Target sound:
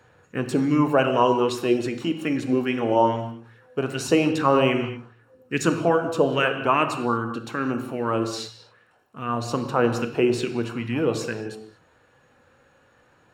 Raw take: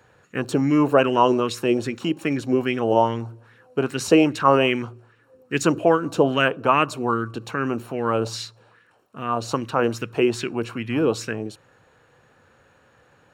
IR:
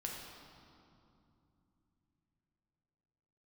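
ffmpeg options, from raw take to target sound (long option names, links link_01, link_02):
-filter_complex "[0:a]asplit=2[link_01][link_02];[1:a]atrim=start_sample=2205,afade=type=out:start_time=0.29:duration=0.01,atrim=end_sample=13230[link_03];[link_02][link_03]afir=irnorm=-1:irlink=0,volume=1.5dB[link_04];[link_01][link_04]amix=inputs=2:normalize=0,aphaser=in_gain=1:out_gain=1:delay=3.7:decay=0.23:speed=0.2:type=sinusoidal,volume=-7.5dB"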